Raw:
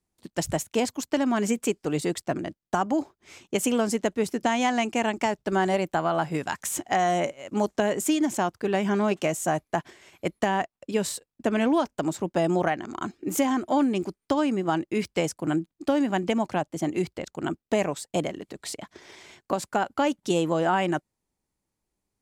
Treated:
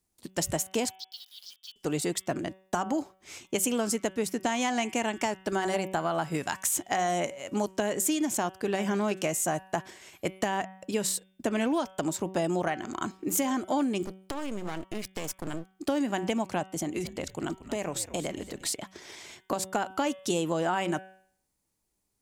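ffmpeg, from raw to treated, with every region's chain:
ffmpeg -i in.wav -filter_complex "[0:a]asettb=1/sr,asplit=3[link_01][link_02][link_03];[link_01]atrim=end=0.954[link_04];[link_02]atrim=start=0.95:end=1.76,asetpts=PTS-STARTPTS,afade=type=in:duration=0.004:curve=qsin,afade=type=out:start_time=0.806:duration=0.004:curve=qsin,asuperpass=centerf=4100:order=8:qfactor=2.2,aeval=exprs='val(0)*gte(abs(val(0)),0.0015)':channel_layout=same[link_05];[link_03]atrim=start=1.756[link_06];[link_04][link_05]acrossfade=duration=0.004:curve1=hsin:curve2=qsin[link_07];[link_07][link_06]acrossfade=duration=0.004:curve1=qsin:curve2=hsin,asettb=1/sr,asplit=3[link_08][link_09][link_10];[link_08]atrim=end=14.054[link_11];[link_09]atrim=start=14.05:end=15.76,asetpts=PTS-STARTPTS,afade=type=in:duration=0.004:curve=qsin,afade=type=out:start_time=1.706:duration=0.004:curve=qsin,acompressor=threshold=-27dB:ratio=6:attack=3.2:release=140:knee=1:detection=peak,aeval=exprs='max(val(0),0)':channel_layout=same[link_12];[link_10]atrim=start=15.756[link_13];[link_11][link_12]acrossfade=duration=0.004:curve1=hsin:curve2=qsin[link_14];[link_14][link_13]acrossfade=duration=0.004:curve1=qsin:curve2=hsin,asettb=1/sr,asplit=3[link_15][link_16][link_17];[link_15]atrim=end=16.684[link_18];[link_16]atrim=start=16.68:end=18.67,asetpts=PTS-STARTPTS,afade=type=in:duration=0.004:curve=qsin,afade=type=out:start_time=1.986:duration=0.004:curve=qsin,acompressor=threshold=-27dB:ratio=4:attack=3.2:release=140:knee=1:detection=peak,asplit=4[link_19][link_20][link_21][link_22];[link_20]adelay=230,afreqshift=-94,volume=-14dB[link_23];[link_21]adelay=460,afreqshift=-188,volume=-23.9dB[link_24];[link_22]adelay=690,afreqshift=-282,volume=-33.8dB[link_25];[link_19][link_23][link_24][link_25]amix=inputs=4:normalize=0,atrim=end_sample=87759[link_26];[link_17]atrim=start=18.666[link_27];[link_18][link_26]acrossfade=duration=0.004:curve1=hsin:curve2=qsin[link_28];[link_28][link_27]acrossfade=duration=0.004:curve1=qsin:curve2=hsin,highshelf=frequency=4900:gain=9,bandreject=frequency=189.2:width_type=h:width=4,bandreject=frequency=378.4:width_type=h:width=4,bandreject=frequency=567.6:width_type=h:width=4,bandreject=frequency=756.8:width_type=h:width=4,bandreject=frequency=946:width_type=h:width=4,bandreject=frequency=1135.2:width_type=h:width=4,bandreject=frequency=1324.4:width_type=h:width=4,bandreject=frequency=1513.6:width_type=h:width=4,bandreject=frequency=1702.8:width_type=h:width=4,bandreject=frequency=1892:width_type=h:width=4,bandreject=frequency=2081.2:width_type=h:width=4,bandreject=frequency=2270.4:width_type=h:width=4,bandreject=frequency=2459.6:width_type=h:width=4,bandreject=frequency=2648.8:width_type=h:width=4,bandreject=frequency=2838:width_type=h:width=4,bandreject=frequency=3027.2:width_type=h:width=4,bandreject=frequency=3216.4:width_type=h:width=4,bandreject=frequency=3405.6:width_type=h:width=4,bandreject=frequency=3594.8:width_type=h:width=4,acompressor=threshold=-28dB:ratio=2" out.wav

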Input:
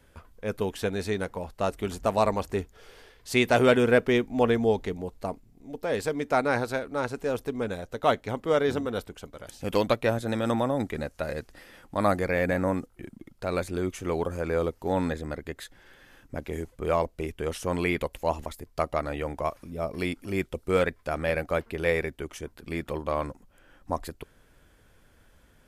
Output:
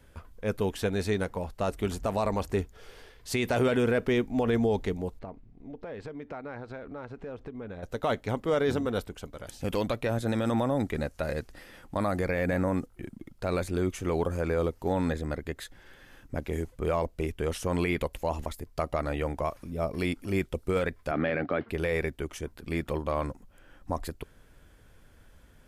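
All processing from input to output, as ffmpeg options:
ffmpeg -i in.wav -filter_complex "[0:a]asettb=1/sr,asplit=3[link_01][link_02][link_03];[link_01]atrim=end=5.194[link_04];[link_02]atrim=start=5.19:end=7.83,asetpts=PTS-STARTPTS,afade=type=in:duration=0.004:curve=qsin,afade=type=out:start_time=2.636:duration=0.004:curve=qsin,lowpass=2600,acompressor=threshold=-39dB:ratio=4:attack=3.2:release=140:knee=1:detection=peak[link_05];[link_03]atrim=start=7.826[link_06];[link_04][link_05]acrossfade=duration=0.004:curve1=hsin:curve2=qsin[link_07];[link_07][link_06]acrossfade=duration=0.004:curve1=qsin:curve2=hsin,asettb=1/sr,asplit=3[link_08][link_09][link_10];[link_08]atrim=end=21.114[link_11];[link_09]atrim=start=21.11:end=21.69,asetpts=PTS-STARTPTS,afade=type=in:duration=0.004:curve=qsin,afade=type=out:start_time=0.576:duration=0.004:curve=qsin,acontrast=71,highpass=frequency=120:width=0.5412,highpass=frequency=120:width=1.3066,equalizer=frequency=170:width_type=q:width=4:gain=-5,equalizer=frequency=270:width_type=q:width=4:gain=4,equalizer=frequency=520:width_type=q:width=4:gain=-5,equalizer=frequency=960:width_type=q:width=4:gain=-6,equalizer=frequency=2600:width_type=q:width=4:gain=-4,lowpass=frequency=3400:width=0.5412,lowpass=frequency=3400:width=1.3066[link_12];[link_10]atrim=start=21.686[link_13];[link_11][link_12]acrossfade=duration=0.004:curve1=hsin:curve2=qsin[link_14];[link_14][link_13]acrossfade=duration=0.004:curve1=qsin:curve2=hsin,alimiter=limit=-18dB:level=0:latency=1:release=39,lowshelf=frequency=170:gain=4.5" out.wav

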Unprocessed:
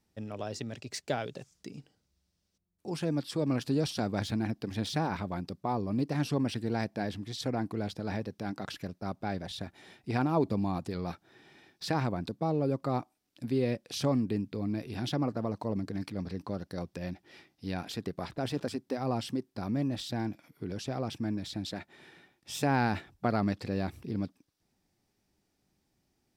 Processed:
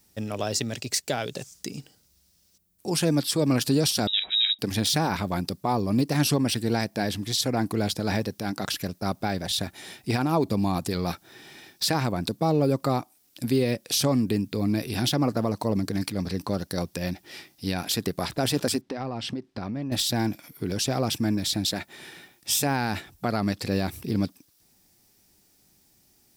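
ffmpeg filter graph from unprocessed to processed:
ffmpeg -i in.wav -filter_complex "[0:a]asettb=1/sr,asplit=3[link_01][link_02][link_03];[link_01]atrim=end=4.074[link_04];[link_02]atrim=start=4.07:end=4.59,asetpts=PTS-STARTPTS,afade=type=in:duration=0.004:curve=qsin,afade=type=out:start_time=0.516:duration=0.004:curve=qsin,highpass=frequency=320:poles=1,highshelf=frequency=3000:gain=-11.5,lowpass=frequency=3400:width_type=q:width=0.5098,lowpass=frequency=3400:width_type=q:width=0.6013,lowpass=frequency=3400:width_type=q:width=0.9,lowpass=frequency=3400:width_type=q:width=2.563,afreqshift=-4000[link_05];[link_03]atrim=start=4.586[link_06];[link_04][link_05]acrossfade=duration=0.004:curve1=hsin:curve2=qsin[link_07];[link_07][link_06]acrossfade=duration=0.004:curve1=qsin:curve2=hsin,asettb=1/sr,asplit=3[link_08][link_09][link_10];[link_08]atrim=end=18.814[link_11];[link_09]atrim=start=18.81:end=19.92,asetpts=PTS-STARTPTS,afade=type=in:duration=0.004:curve=qsin,afade=type=out:start_time=1.106:duration=0.004:curve=qsin,lowpass=3200,acompressor=threshold=-35dB:ratio=12:attack=3.2:release=140:knee=1:detection=peak[link_12];[link_10]atrim=start=19.916[link_13];[link_11][link_12]acrossfade=duration=0.004:curve1=hsin:curve2=qsin[link_14];[link_14][link_13]acrossfade=duration=0.004:curve1=qsin:curve2=hsin,aemphasis=mode=production:type=75kf,alimiter=limit=-21dB:level=0:latency=1:release=286,volume=8dB" out.wav

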